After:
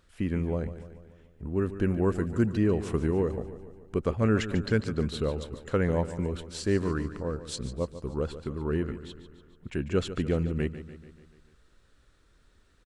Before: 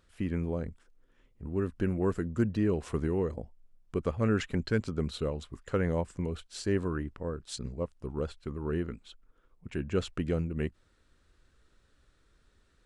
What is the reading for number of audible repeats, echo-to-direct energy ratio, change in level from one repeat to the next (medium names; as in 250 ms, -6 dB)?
5, -11.5 dB, -5.0 dB